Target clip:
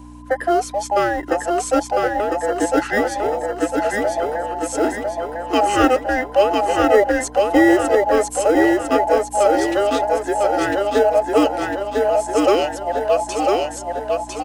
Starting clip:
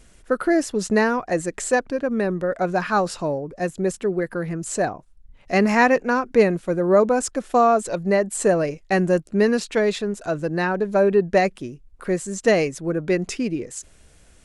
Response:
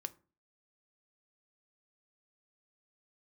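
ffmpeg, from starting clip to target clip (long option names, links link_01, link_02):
-filter_complex "[0:a]afftfilt=real='real(if(between(b,1,1008),(2*floor((b-1)/48)+1)*48-b,b),0)':imag='imag(if(between(b,1,1008),(2*floor((b-1)/48)+1)*48-b,b),0)*if(between(b,1,1008),-1,1)':win_size=2048:overlap=0.75,aecho=1:1:1002|2004|3006|4008|5010|6012:0.708|0.34|0.163|0.0783|0.0376|0.018,acrossover=split=290|1200|4800[link_01][link_02][link_03][link_04];[link_01]acrusher=samples=25:mix=1:aa=0.000001[link_05];[link_05][link_02][link_03][link_04]amix=inputs=4:normalize=0,aeval=exprs='val(0)+0.0251*(sin(2*PI*60*n/s)+sin(2*PI*2*60*n/s)/2+sin(2*PI*3*60*n/s)/3+sin(2*PI*4*60*n/s)/4+sin(2*PI*5*60*n/s)/5)':channel_layout=same,lowshelf=frequency=230:width_type=q:width=3:gain=-7"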